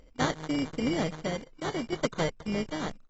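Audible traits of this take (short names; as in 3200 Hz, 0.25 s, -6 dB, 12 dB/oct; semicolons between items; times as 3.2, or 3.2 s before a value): a buzz of ramps at a fixed pitch in blocks of 16 samples; random-step tremolo 2.6 Hz; aliases and images of a low sample rate 2600 Hz, jitter 0%; AAC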